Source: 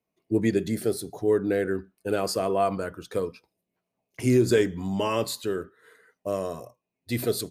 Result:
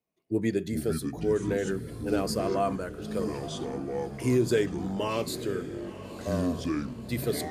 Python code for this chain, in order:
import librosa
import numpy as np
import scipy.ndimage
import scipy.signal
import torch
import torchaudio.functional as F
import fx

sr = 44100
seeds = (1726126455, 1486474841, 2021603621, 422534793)

y = fx.echo_pitch(x, sr, ms=269, semitones=-6, count=3, db_per_echo=-6.0)
y = fx.echo_diffused(y, sr, ms=1008, feedback_pct=42, wet_db=-13.5)
y = F.gain(torch.from_numpy(y), -4.0).numpy()